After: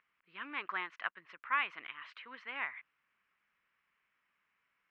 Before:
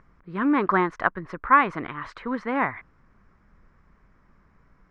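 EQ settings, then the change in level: band-pass filter 2.8 kHz, Q 3.9; +1.0 dB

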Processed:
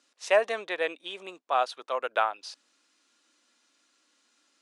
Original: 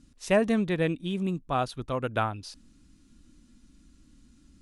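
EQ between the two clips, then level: high-pass 530 Hz 24 dB/octave; distance through air 93 m; treble shelf 7.9 kHz +9 dB; +3.5 dB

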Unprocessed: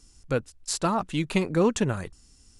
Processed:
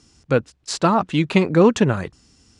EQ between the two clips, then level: high-pass 94 Hz 12 dB/octave; distance through air 95 m; +8.5 dB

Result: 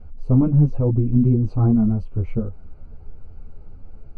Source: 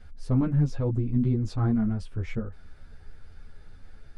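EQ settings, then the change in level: boxcar filter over 25 samples; +8.0 dB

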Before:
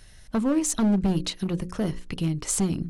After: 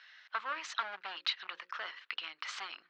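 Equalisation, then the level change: ladder high-pass 1.1 kHz, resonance 35%; inverse Chebyshev low-pass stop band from 9.2 kHz, stop band 50 dB; +8.0 dB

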